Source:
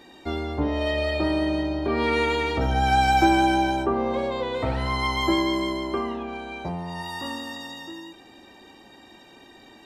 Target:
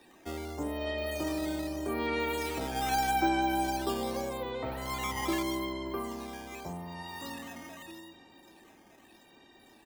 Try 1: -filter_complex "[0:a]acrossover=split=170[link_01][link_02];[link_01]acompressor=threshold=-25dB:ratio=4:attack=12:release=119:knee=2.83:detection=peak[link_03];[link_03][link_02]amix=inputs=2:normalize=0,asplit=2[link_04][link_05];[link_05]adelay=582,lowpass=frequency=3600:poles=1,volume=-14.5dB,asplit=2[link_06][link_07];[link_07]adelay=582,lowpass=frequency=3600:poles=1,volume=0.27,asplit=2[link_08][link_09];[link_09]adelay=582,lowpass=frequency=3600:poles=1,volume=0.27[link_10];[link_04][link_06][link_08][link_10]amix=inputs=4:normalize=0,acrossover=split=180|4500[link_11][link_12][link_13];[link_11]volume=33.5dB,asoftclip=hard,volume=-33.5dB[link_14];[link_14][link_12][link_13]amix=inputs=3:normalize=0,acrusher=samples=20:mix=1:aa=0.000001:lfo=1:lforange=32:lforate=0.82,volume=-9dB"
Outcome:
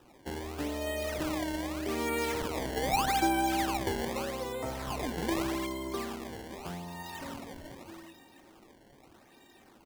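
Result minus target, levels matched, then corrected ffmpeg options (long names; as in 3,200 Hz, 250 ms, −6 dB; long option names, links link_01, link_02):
sample-and-hold swept by an LFO: distortion +9 dB
-filter_complex "[0:a]acrossover=split=170[link_01][link_02];[link_01]acompressor=threshold=-25dB:ratio=4:attack=12:release=119:knee=2.83:detection=peak[link_03];[link_03][link_02]amix=inputs=2:normalize=0,asplit=2[link_04][link_05];[link_05]adelay=582,lowpass=frequency=3600:poles=1,volume=-14.5dB,asplit=2[link_06][link_07];[link_07]adelay=582,lowpass=frequency=3600:poles=1,volume=0.27,asplit=2[link_08][link_09];[link_09]adelay=582,lowpass=frequency=3600:poles=1,volume=0.27[link_10];[link_04][link_06][link_08][link_10]amix=inputs=4:normalize=0,acrossover=split=180|4500[link_11][link_12][link_13];[link_11]volume=33.5dB,asoftclip=hard,volume=-33.5dB[link_14];[link_14][link_12][link_13]amix=inputs=3:normalize=0,acrusher=samples=6:mix=1:aa=0.000001:lfo=1:lforange=9.6:lforate=0.82,volume=-9dB"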